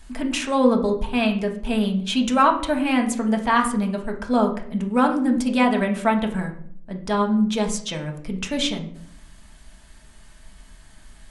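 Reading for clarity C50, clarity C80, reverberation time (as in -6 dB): 10.0 dB, 14.0 dB, 0.60 s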